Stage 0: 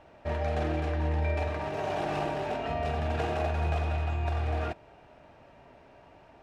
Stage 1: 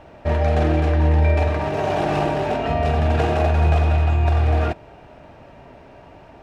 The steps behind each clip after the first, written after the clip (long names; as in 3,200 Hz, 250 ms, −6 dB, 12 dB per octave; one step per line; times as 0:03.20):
low-shelf EQ 430 Hz +4.5 dB
level +8.5 dB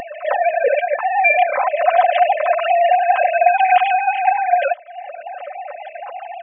three sine waves on the formant tracks
comb filter 3.9 ms, depth 77%
upward compression, threshold −23 dBFS
level +2 dB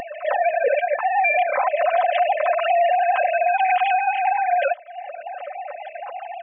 brickwall limiter −9.5 dBFS, peak gain reduction 7.5 dB
level −2 dB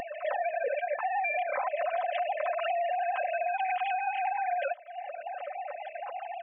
downward compressor, threshold −22 dBFS, peak gain reduction 7.5 dB
level −5.5 dB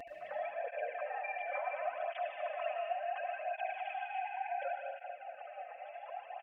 single-tap delay 74 ms −11 dB
convolution reverb RT60 1.9 s, pre-delay 69 ms, DRR 0.5 dB
through-zero flanger with one copy inverted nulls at 0.7 Hz, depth 5.4 ms
level −8.5 dB